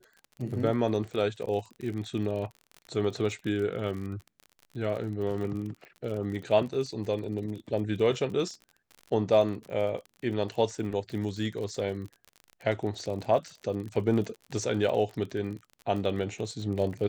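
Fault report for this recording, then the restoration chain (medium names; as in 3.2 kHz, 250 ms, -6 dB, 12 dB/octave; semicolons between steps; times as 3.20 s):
crackle 40 per s -36 dBFS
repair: de-click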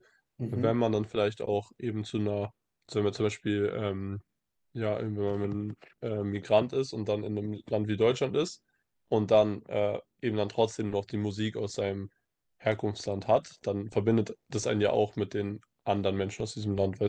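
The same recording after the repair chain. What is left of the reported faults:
nothing left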